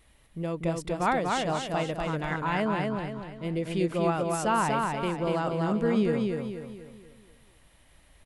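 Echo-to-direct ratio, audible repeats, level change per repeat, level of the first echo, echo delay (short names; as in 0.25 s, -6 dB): -2.0 dB, 5, -7.5 dB, -3.0 dB, 0.241 s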